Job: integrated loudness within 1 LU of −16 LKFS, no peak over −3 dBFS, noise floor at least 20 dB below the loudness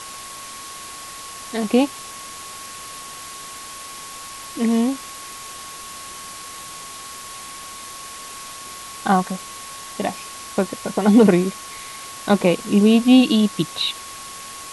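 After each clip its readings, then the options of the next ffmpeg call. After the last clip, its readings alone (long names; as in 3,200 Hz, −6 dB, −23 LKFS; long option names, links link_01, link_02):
interfering tone 1,100 Hz; level of the tone −38 dBFS; background noise floor −36 dBFS; target noise floor −39 dBFS; integrated loudness −19.0 LKFS; sample peak −3.0 dBFS; target loudness −16.0 LKFS
→ -af "bandreject=frequency=1100:width=30"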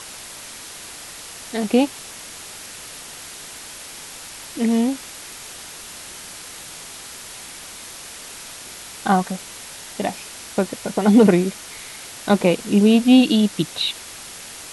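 interfering tone none found; background noise floor −38 dBFS; target noise floor −39 dBFS
→ -af "afftdn=noise_reduction=6:noise_floor=-38"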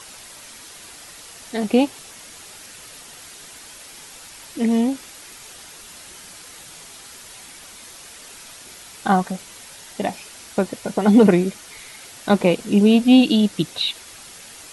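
background noise floor −42 dBFS; integrated loudness −19.0 LKFS; sample peak −3.5 dBFS; target loudness −16.0 LKFS
→ -af "volume=3dB,alimiter=limit=-3dB:level=0:latency=1"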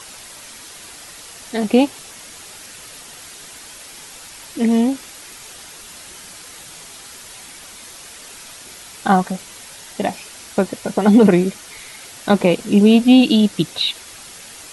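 integrated loudness −16.5 LKFS; sample peak −3.0 dBFS; background noise floor −39 dBFS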